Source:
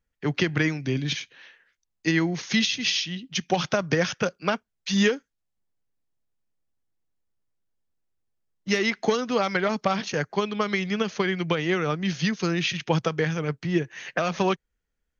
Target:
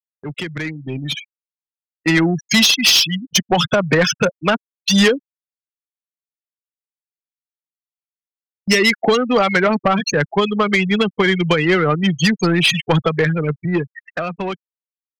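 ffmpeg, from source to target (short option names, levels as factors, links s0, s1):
-af "afftfilt=real='re*gte(hypot(re,im),0.0631)':imag='im*gte(hypot(re,im),0.0631)':win_size=1024:overlap=0.75,agate=range=0.0794:threshold=0.00631:ratio=16:detection=peak,aemphasis=mode=production:type=75fm,asoftclip=type=tanh:threshold=0.106,dynaudnorm=f=100:g=31:m=3.98"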